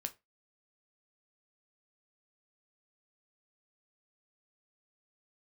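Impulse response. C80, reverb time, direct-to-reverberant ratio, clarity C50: 28.0 dB, 0.20 s, 7.0 dB, 19.0 dB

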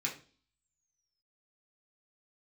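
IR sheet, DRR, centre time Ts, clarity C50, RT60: -3.0 dB, 18 ms, 10.5 dB, 0.40 s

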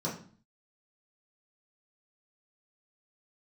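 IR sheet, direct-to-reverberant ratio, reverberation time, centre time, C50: -7.0 dB, 0.45 s, 28 ms, 7.5 dB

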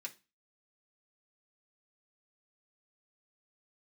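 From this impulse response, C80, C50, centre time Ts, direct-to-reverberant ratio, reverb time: 25.0 dB, 18.0 dB, 7 ms, -1.5 dB, 0.30 s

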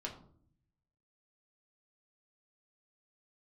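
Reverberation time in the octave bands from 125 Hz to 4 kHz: 1.2, 0.90, 0.65, 0.50, 0.35, 0.30 s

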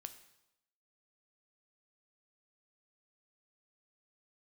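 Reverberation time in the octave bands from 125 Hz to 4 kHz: 0.85, 0.85, 0.90, 0.85, 0.80, 0.80 s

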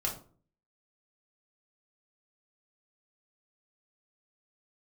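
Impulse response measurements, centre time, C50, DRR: 22 ms, 8.5 dB, -2.0 dB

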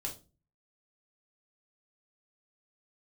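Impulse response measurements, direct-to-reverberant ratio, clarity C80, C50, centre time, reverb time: -0.5 dB, 18.5 dB, 11.0 dB, 16 ms, 0.30 s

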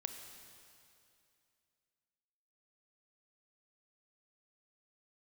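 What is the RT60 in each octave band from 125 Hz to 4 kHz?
2.7, 2.6, 2.6, 2.5, 2.5, 2.5 s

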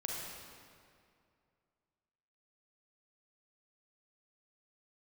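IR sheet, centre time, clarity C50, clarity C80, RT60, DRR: 0.121 s, -1.5 dB, 0.5 dB, 2.3 s, -2.5 dB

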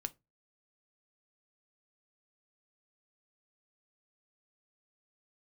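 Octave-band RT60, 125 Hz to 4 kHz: 0.35, 0.30, 0.25, 0.20, 0.20, 0.15 s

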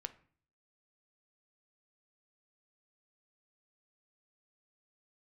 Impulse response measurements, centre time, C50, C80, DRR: 4 ms, 16.5 dB, 21.0 dB, 10.0 dB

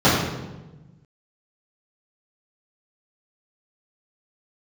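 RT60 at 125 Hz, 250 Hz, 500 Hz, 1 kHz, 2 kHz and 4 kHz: 1.8, 1.6, 1.2, 1.0, 0.90, 0.80 s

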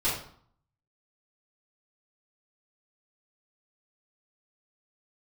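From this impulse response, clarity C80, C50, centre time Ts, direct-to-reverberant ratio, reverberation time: 8.0 dB, 3.5 dB, 43 ms, -11.5 dB, 0.55 s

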